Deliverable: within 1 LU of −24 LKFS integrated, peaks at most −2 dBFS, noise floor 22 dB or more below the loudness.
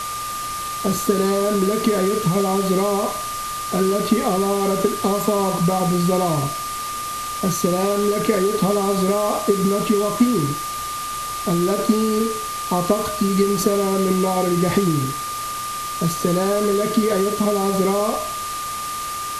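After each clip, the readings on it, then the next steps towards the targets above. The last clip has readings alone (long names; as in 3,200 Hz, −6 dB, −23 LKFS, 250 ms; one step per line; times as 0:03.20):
interfering tone 1,200 Hz; level of the tone −26 dBFS; background noise floor −28 dBFS; target noise floor −43 dBFS; integrated loudness −20.5 LKFS; sample peak −5.0 dBFS; target loudness −24.0 LKFS
→ notch filter 1,200 Hz, Q 30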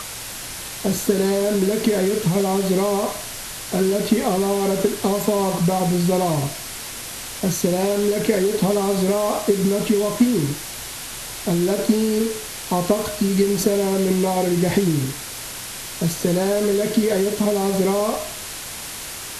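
interfering tone none found; background noise floor −33 dBFS; target noise floor −43 dBFS
→ broadband denoise 10 dB, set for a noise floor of −33 dBFS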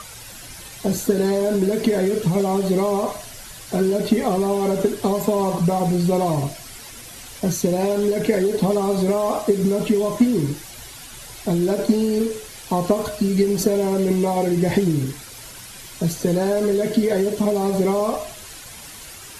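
background noise floor −39 dBFS; target noise floor −43 dBFS
→ broadband denoise 6 dB, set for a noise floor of −39 dBFS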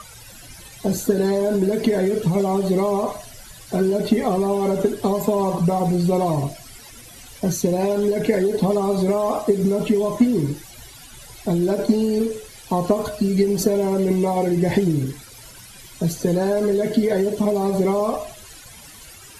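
background noise floor −43 dBFS; integrated loudness −21.0 LKFS; sample peak −6.5 dBFS; target loudness −24.0 LKFS
→ level −3 dB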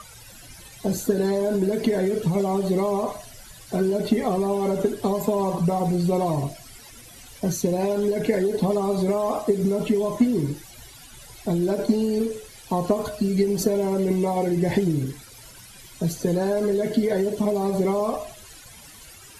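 integrated loudness −24.0 LKFS; sample peak −9.5 dBFS; background noise floor −46 dBFS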